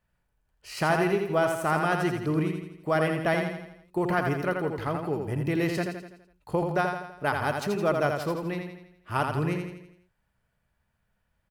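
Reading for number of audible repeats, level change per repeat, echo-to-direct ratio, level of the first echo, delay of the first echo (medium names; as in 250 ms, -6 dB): 5, -6.0 dB, -4.0 dB, -5.0 dB, 83 ms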